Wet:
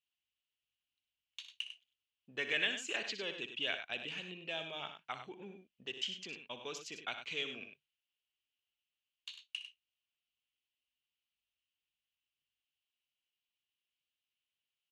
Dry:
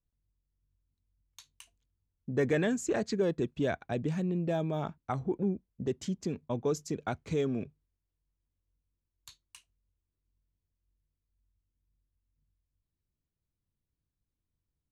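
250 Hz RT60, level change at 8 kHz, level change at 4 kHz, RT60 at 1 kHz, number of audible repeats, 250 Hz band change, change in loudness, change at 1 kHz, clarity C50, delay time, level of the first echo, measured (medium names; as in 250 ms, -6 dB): no reverb, -5.5 dB, +10.5 dB, no reverb, 2, -20.0 dB, -7.0 dB, -8.5 dB, no reverb, 61 ms, -11.0 dB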